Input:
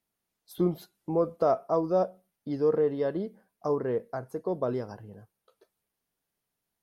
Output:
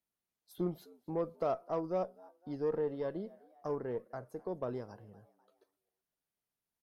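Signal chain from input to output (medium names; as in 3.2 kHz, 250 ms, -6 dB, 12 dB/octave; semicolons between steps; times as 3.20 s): frequency-shifting echo 255 ms, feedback 48%, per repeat +90 Hz, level -24 dB; Chebyshev shaper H 6 -29 dB, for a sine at -13 dBFS; trim -9 dB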